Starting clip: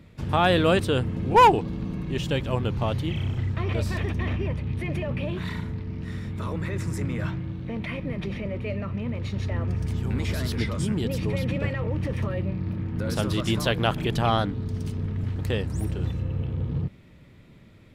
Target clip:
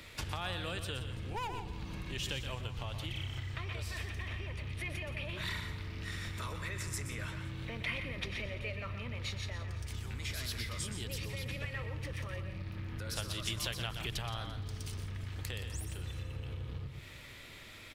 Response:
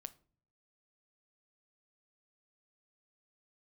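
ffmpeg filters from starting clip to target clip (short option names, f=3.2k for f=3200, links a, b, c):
-filter_complex "[0:a]acrossover=split=170[a][b];[b]acompressor=threshold=-43dB:ratio=3[c];[a][c]amix=inputs=2:normalize=0,equalizer=f=170:t=o:w=1.3:g=-12.5,asplit=2[d][e];[1:a]atrim=start_sample=2205,adelay=123[f];[e][f]afir=irnorm=-1:irlink=0,volume=-3.5dB[g];[d][g]amix=inputs=2:normalize=0,acompressor=threshold=-37dB:ratio=6,tiltshelf=f=1.3k:g=-7.5,aecho=1:1:171|342|513|684|855:0.178|0.0907|0.0463|0.0236|0.012,volume=7dB"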